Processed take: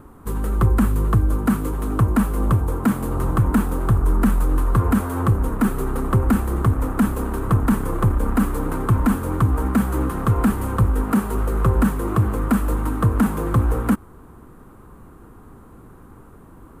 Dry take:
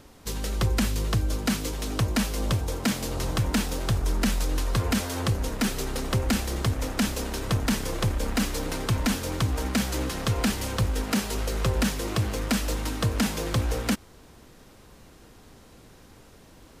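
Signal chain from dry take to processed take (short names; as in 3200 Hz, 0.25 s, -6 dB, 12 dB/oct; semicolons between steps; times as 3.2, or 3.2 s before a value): EQ curve 380 Hz 0 dB, 590 Hz -8 dB, 1200 Hz +3 dB, 2000 Hz -13 dB, 5400 Hz -27 dB, 8900 Hz -10 dB, 14000 Hz -7 dB; gain +8 dB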